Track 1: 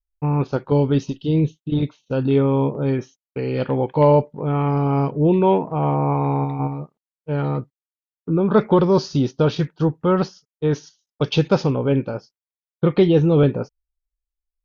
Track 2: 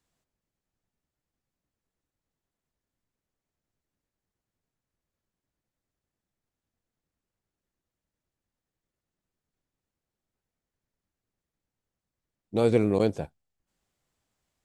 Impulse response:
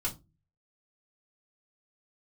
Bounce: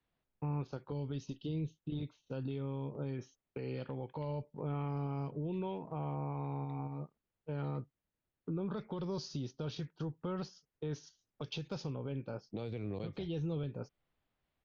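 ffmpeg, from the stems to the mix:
-filter_complex "[0:a]adelay=200,volume=-10dB[a];[1:a]lowpass=f=3.7k:w=0.5412,lowpass=f=3.7k:w=1.3066,volume=-3dB[b];[a][b]amix=inputs=2:normalize=0,acrossover=split=130|3000[c][d][e];[d]acompressor=threshold=-34dB:ratio=6[f];[c][f][e]amix=inputs=3:normalize=0,alimiter=level_in=6.5dB:limit=-24dB:level=0:latency=1:release=270,volume=-6.5dB"

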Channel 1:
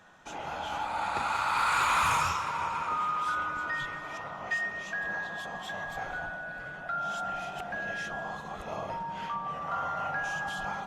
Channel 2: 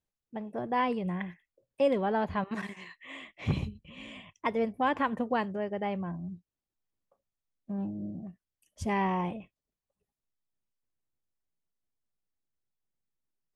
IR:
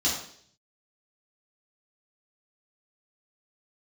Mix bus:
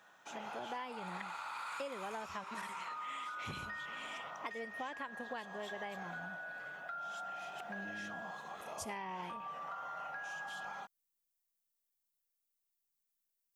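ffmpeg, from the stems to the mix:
-filter_complex "[0:a]highpass=120,acompressor=threshold=-34dB:ratio=6,volume=-5dB[a];[1:a]aemphasis=mode=production:type=75kf,volume=-5.5dB[b];[a][b]amix=inputs=2:normalize=0,lowshelf=f=310:g=-12,acompressor=threshold=-39dB:ratio=10"

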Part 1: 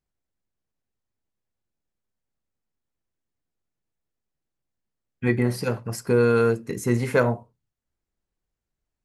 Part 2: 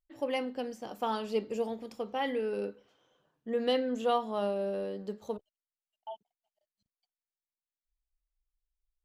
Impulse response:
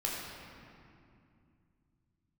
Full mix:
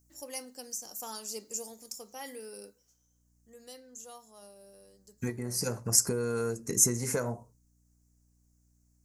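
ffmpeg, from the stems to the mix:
-filter_complex "[0:a]acompressor=threshold=-29dB:ratio=6,aeval=exprs='val(0)+0.000447*(sin(2*PI*60*n/s)+sin(2*PI*2*60*n/s)/2+sin(2*PI*3*60*n/s)/3+sin(2*PI*4*60*n/s)/4+sin(2*PI*5*60*n/s)/5)':c=same,volume=0dB[a];[1:a]crystalizer=i=6:c=0,volume=-13dB,afade=t=out:st=2.45:d=0.64:silence=0.298538,asplit=2[b][c];[c]apad=whole_len=398999[d];[a][d]sidechaincompress=threshold=-55dB:ratio=8:attack=6.2:release=796[e];[e][b]amix=inputs=2:normalize=0,highshelf=f=4.6k:t=q:w=3:g=12"

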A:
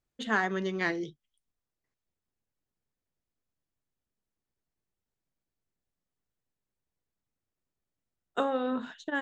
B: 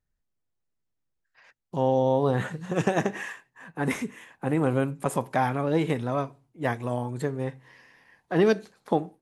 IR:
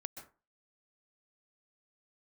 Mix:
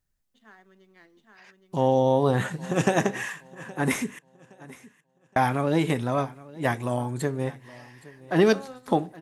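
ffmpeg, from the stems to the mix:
-filter_complex "[0:a]aeval=exprs='sgn(val(0))*max(abs(val(0))-0.00422,0)':c=same,adelay=150,volume=-10.5dB,asplit=2[a][b];[b]volume=-17.5dB[c];[1:a]highshelf=f=4.4k:g=7,volume=2dB,asplit=3[d][e][f];[d]atrim=end=4.19,asetpts=PTS-STARTPTS,afade=t=out:st=4.186:d=0.004:c=hsin[g];[e]atrim=start=4.19:end=5.36,asetpts=PTS-STARTPTS,volume=0[h];[f]atrim=start=5.36,asetpts=PTS-STARTPTS,afade=t=in:d=0.004:c=hsin[i];[g][h][i]concat=n=3:v=0:a=1,asplit=3[j][k][l];[k]volume=-20.5dB[m];[l]apad=whole_len=412986[n];[a][n]sidechaingate=range=-14dB:threshold=-47dB:ratio=16:detection=peak[o];[c][m]amix=inputs=2:normalize=0,aecho=0:1:818|1636|2454|3272:1|0.31|0.0961|0.0298[p];[o][j][p]amix=inputs=3:normalize=0,bandreject=f=470:w=12"

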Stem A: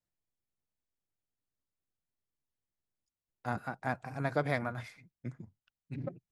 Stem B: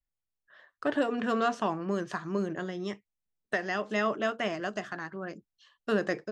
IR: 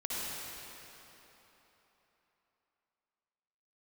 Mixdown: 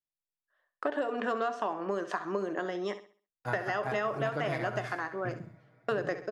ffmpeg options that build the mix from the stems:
-filter_complex "[0:a]agate=range=-18dB:threshold=-56dB:ratio=16:detection=peak,aecho=1:1:6.2:0.59,volume=0.5dB,asplit=3[a][b][c];[b]volume=-22.5dB[d];[c]volume=-7dB[e];[1:a]highpass=280,agate=range=-23dB:threshold=-46dB:ratio=16:detection=peak,equalizer=f=730:t=o:w=2.8:g=8,volume=-1dB,asplit=2[f][g];[g]volume=-13.5dB[h];[2:a]atrim=start_sample=2205[i];[d][i]afir=irnorm=-1:irlink=0[j];[e][h]amix=inputs=2:normalize=0,aecho=0:1:66|132|198|264|330:1|0.32|0.102|0.0328|0.0105[k];[a][f][j][k]amix=inputs=4:normalize=0,acompressor=threshold=-28dB:ratio=6"

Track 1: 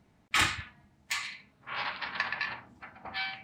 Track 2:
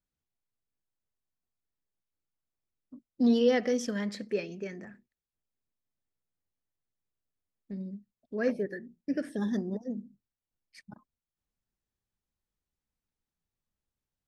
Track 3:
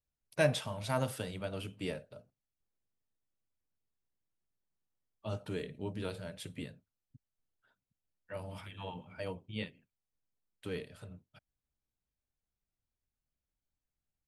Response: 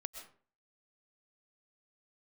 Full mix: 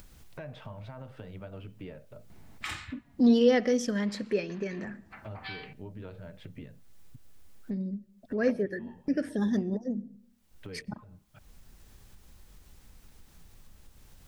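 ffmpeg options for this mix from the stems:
-filter_complex "[0:a]adelay=2300,volume=-18dB,asplit=2[a][b];[b]volume=-20dB[c];[1:a]volume=1dB,asplit=3[d][e][f];[e]volume=-16.5dB[g];[2:a]lowpass=2.1k,alimiter=level_in=4.5dB:limit=-24dB:level=0:latency=1:release=164,volume=-4.5dB,volume=-18.5dB[h];[f]apad=whole_len=252860[i];[a][i]sidechaincompress=threshold=-36dB:ratio=8:attack=16:release=547[j];[3:a]atrim=start_sample=2205[k];[c][g]amix=inputs=2:normalize=0[l];[l][k]afir=irnorm=-1:irlink=0[m];[j][d][h][m]amix=inputs=4:normalize=0,lowshelf=f=77:g=10.5,acompressor=mode=upward:threshold=-29dB:ratio=2.5"

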